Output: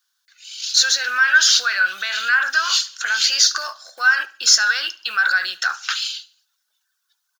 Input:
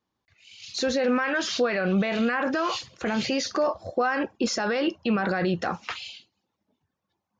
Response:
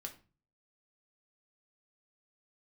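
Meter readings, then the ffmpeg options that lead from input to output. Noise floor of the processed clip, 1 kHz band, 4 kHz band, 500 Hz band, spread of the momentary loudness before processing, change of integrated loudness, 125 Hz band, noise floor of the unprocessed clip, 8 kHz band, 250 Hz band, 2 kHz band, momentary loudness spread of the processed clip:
−74 dBFS, +3.0 dB, +16.0 dB, −18.0 dB, 8 LU, +9.5 dB, below −35 dB, −82 dBFS, can't be measured, below −30 dB, +14.0 dB, 11 LU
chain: -filter_complex "[0:a]aexciter=amount=9.9:drive=2.8:freq=3200,acrusher=bits=7:mode=log:mix=0:aa=0.000001,highpass=frequency=1500:width_type=q:width=8.9,asplit=2[link_01][link_02];[link_02]aecho=0:1:72|144|216:0.0891|0.0348|0.0136[link_03];[link_01][link_03]amix=inputs=2:normalize=0,volume=-1.5dB"

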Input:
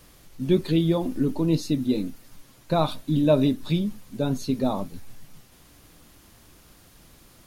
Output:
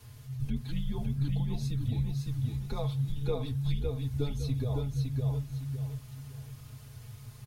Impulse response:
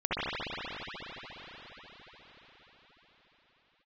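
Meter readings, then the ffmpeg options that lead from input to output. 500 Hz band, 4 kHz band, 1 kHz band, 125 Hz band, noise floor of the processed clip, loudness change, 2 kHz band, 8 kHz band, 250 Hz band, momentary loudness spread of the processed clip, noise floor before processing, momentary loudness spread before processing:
−13.5 dB, −10.0 dB, −15.5 dB, −0.5 dB, −50 dBFS, −8.5 dB, −11.0 dB, can't be measured, −13.0 dB, 14 LU, −54 dBFS, 10 LU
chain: -af "lowshelf=frequency=120:gain=10.5,aecho=1:1:5.1:0.88,acompressor=threshold=-23dB:ratio=6,afreqshift=-140,aecho=1:1:560|1120|1680|2240:0.668|0.201|0.0602|0.018,volume=-6.5dB"

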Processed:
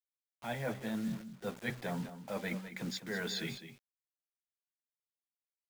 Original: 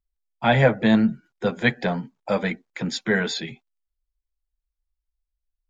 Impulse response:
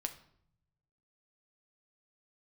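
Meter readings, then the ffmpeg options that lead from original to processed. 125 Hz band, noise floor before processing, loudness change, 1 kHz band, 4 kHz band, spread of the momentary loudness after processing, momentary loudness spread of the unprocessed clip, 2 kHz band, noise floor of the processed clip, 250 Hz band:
−17.0 dB, −84 dBFS, −16.5 dB, −18.0 dB, −12.0 dB, 6 LU, 12 LU, −16.5 dB, below −85 dBFS, −16.5 dB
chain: -af "bandreject=frequency=62.46:width_type=h:width=4,bandreject=frequency=124.92:width_type=h:width=4,bandreject=frequency=187.38:width_type=h:width=4,areverse,acompressor=threshold=-32dB:ratio=8,areverse,acrusher=bits=7:mix=0:aa=0.000001,aecho=1:1:205:0.266,volume=-3.5dB"

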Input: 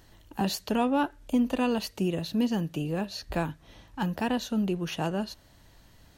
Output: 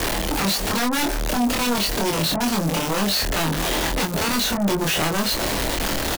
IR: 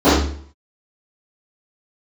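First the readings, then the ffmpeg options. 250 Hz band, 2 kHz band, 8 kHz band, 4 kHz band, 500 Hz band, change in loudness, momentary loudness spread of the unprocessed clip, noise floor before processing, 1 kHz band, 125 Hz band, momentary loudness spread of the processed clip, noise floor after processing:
+4.5 dB, +14.0 dB, +19.0 dB, +16.0 dB, +7.0 dB, +8.0 dB, 9 LU, −57 dBFS, +8.5 dB, +7.0 dB, 2 LU, −25 dBFS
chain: -filter_complex "[0:a]aeval=exprs='val(0)+0.5*0.0299*sgn(val(0))':channel_layout=same,equalizer=frequency=120:width_type=o:width=1.4:gain=-9,acrossover=split=180|1600|4500[link_01][link_02][link_03][link_04];[link_01]acompressor=threshold=-49dB:ratio=4[link_05];[link_02]acompressor=threshold=-37dB:ratio=4[link_06];[link_03]acompressor=threshold=-43dB:ratio=4[link_07];[link_04]acompressor=threshold=-50dB:ratio=4[link_08];[link_05][link_06][link_07][link_08]amix=inputs=4:normalize=0,acrossover=split=180|1100[link_09][link_10][link_11];[link_11]acrusher=bits=6:mix=0:aa=0.000001[link_12];[link_09][link_10][link_12]amix=inputs=3:normalize=0,aeval=exprs='0.0794*sin(PI/2*5.01*val(0)/0.0794)':channel_layout=same,asplit=2[link_13][link_14];[link_14]adelay=25,volume=-2.5dB[link_15];[link_13][link_15]amix=inputs=2:normalize=0,volume=2dB"

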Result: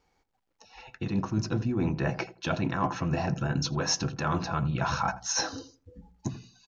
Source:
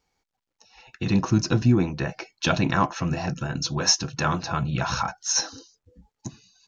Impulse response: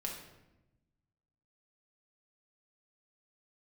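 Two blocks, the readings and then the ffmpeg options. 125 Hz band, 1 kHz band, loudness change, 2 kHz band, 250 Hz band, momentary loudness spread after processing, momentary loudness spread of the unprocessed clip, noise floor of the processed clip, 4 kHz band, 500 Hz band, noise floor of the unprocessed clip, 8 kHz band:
−4.5 dB, −3.5 dB, −5.5 dB, −4.5 dB, −5.5 dB, 10 LU, 12 LU, −76 dBFS, −7.0 dB, −3.5 dB, −83 dBFS, −7.0 dB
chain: -filter_complex "[0:a]highshelf=frequency=3000:gain=-9,bandreject=frequency=60:width_type=h:width=6,bandreject=frequency=120:width_type=h:width=6,bandreject=frequency=180:width_type=h:width=6,bandreject=frequency=240:width_type=h:width=6,areverse,acompressor=threshold=-30dB:ratio=10,areverse,asplit=2[link_01][link_02];[link_02]adelay=83,lowpass=frequency=880:poles=1,volume=-13dB,asplit=2[link_03][link_04];[link_04]adelay=83,lowpass=frequency=880:poles=1,volume=0.26,asplit=2[link_05][link_06];[link_06]adelay=83,lowpass=frequency=880:poles=1,volume=0.26[link_07];[link_01][link_03][link_05][link_07]amix=inputs=4:normalize=0,volume=5.5dB"

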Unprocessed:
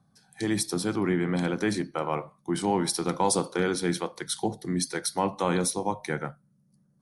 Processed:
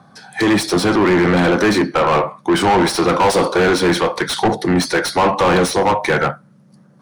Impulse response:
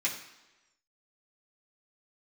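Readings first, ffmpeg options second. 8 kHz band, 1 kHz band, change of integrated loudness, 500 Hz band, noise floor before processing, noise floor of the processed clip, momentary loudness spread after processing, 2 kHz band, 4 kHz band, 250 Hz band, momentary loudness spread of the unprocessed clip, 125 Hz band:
+4.5 dB, +14.5 dB, +12.5 dB, +14.0 dB, −67 dBFS, −49 dBFS, 5 LU, +16.5 dB, +13.0 dB, +12.0 dB, 6 LU, +10.5 dB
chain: -filter_complex "[0:a]highshelf=frequency=7300:gain=-6.5,asplit=2[link_01][link_02];[link_02]highpass=frequency=720:poles=1,volume=35dB,asoftclip=type=tanh:threshold=-4.5dB[link_03];[link_01][link_03]amix=inputs=2:normalize=0,lowpass=frequency=2000:poles=1,volume=-6dB"

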